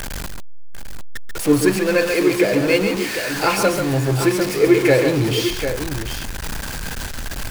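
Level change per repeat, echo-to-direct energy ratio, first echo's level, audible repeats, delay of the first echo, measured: no steady repeat, -4.5 dB, -6.5 dB, 2, 0.138 s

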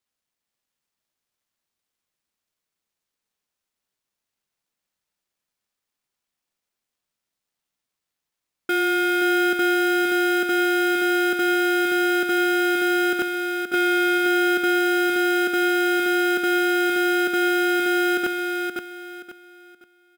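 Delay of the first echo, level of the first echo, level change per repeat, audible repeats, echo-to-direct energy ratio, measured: 0.525 s, -5.0 dB, -11.0 dB, 3, -4.5 dB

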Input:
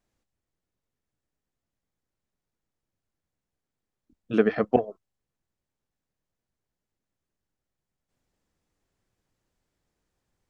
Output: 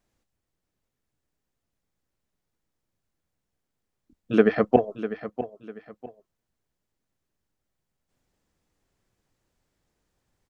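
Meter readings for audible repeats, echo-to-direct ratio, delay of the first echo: 2, -12.0 dB, 0.649 s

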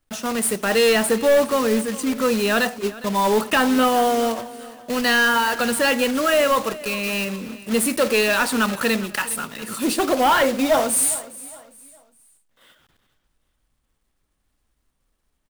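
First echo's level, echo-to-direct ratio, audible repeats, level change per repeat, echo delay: -18.5 dB, -18.0 dB, 2, -9.0 dB, 0.409 s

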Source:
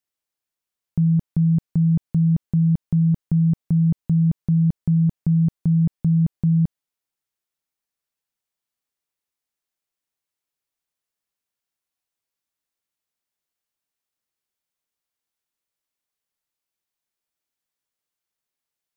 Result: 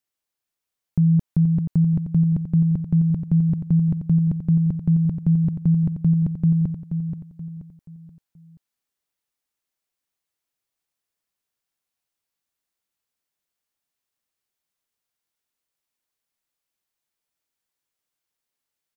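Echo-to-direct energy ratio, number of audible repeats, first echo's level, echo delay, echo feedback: -7.5 dB, 4, -8.0 dB, 0.479 s, 39%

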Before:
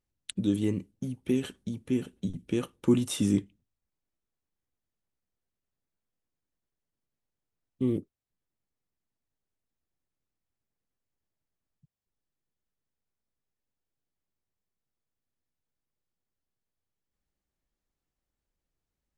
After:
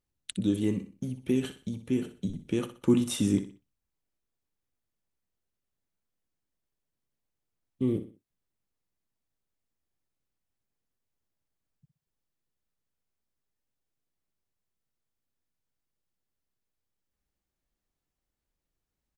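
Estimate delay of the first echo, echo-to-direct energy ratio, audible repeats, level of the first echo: 62 ms, -11.0 dB, 3, -11.5 dB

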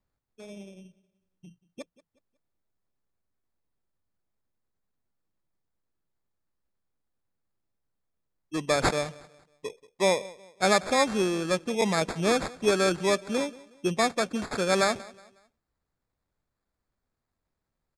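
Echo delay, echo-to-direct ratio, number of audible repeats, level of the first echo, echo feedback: 0.183 s, -20.5 dB, 2, -21.0 dB, 36%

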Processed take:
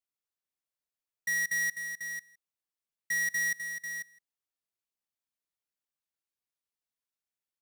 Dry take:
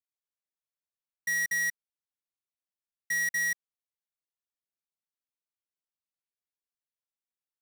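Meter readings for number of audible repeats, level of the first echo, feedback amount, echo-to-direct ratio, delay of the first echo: 3, -23.0 dB, no steady repeat, -8.0 dB, 0.163 s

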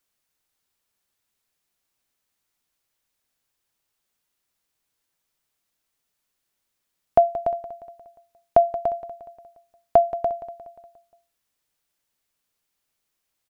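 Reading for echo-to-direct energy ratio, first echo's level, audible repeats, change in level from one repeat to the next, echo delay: -13.0 dB, -14.5 dB, 4, -5.5 dB, 0.177 s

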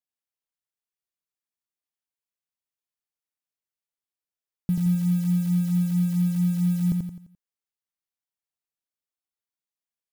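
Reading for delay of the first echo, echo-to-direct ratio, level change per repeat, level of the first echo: 86 ms, -2.5 dB, -7.5 dB, -3.5 dB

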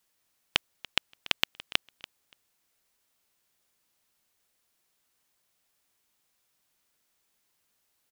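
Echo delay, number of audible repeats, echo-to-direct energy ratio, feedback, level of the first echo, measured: 0.287 s, 2, -18.5 dB, 17%, -18.5 dB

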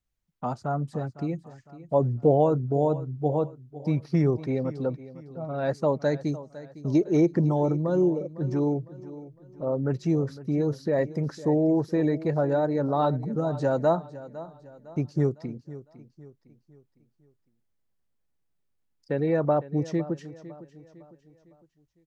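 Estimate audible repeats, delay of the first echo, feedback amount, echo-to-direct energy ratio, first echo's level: 3, 0.506 s, 42%, -15.5 dB, -16.5 dB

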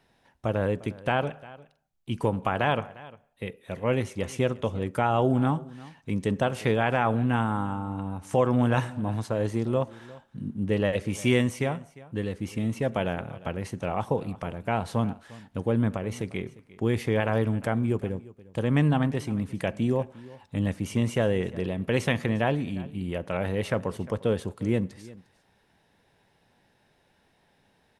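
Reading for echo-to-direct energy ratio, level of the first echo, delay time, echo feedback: -20.0 dB, -20.0 dB, 0.352 s, no steady repeat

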